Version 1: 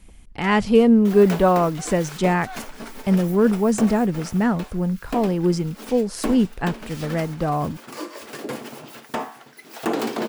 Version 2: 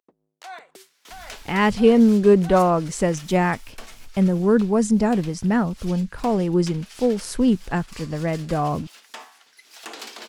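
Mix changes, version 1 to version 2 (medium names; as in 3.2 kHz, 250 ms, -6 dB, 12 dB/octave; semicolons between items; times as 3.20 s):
speech: entry +1.10 s; second sound: add band-pass filter 5.2 kHz, Q 0.74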